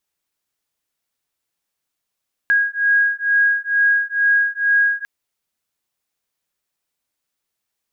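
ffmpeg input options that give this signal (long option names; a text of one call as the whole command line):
ffmpeg -f lavfi -i "aevalsrc='0.141*(sin(2*PI*1640*t)+sin(2*PI*1642.2*t))':duration=2.55:sample_rate=44100" out.wav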